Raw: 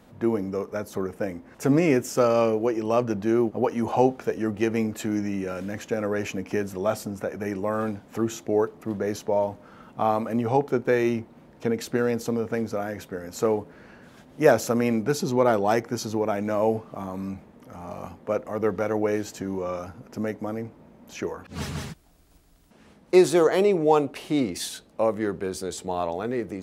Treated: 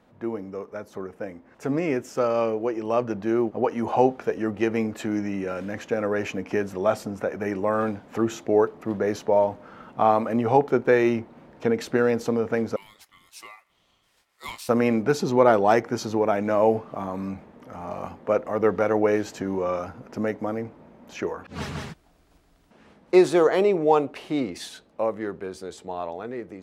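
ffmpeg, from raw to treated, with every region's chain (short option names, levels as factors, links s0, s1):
-filter_complex "[0:a]asettb=1/sr,asplit=3[s0][s1][s2];[s0]atrim=end=12.764[s3];[s1]atrim=start=12.76:end=14.69,asetpts=PTS-STARTPTS,afade=t=in:d=0.004:c=qsin,afade=t=out:st=1.926:d=0.004:c=qsin,aderivative,aeval=exprs='val(0)*sin(2*PI*1600*n/s)':c=same[s4];[s2]atrim=start=14.686[s5];[s3][s4]acrossfade=d=0.004:c1=hsin:c2=qsin[s6];[s6][s5]acrossfade=d=0.004:c1=qsin:c2=hsin,lowpass=f=2700:p=1,lowshelf=f=300:g=-6.5,dynaudnorm=f=530:g=11:m=3.35,volume=0.708"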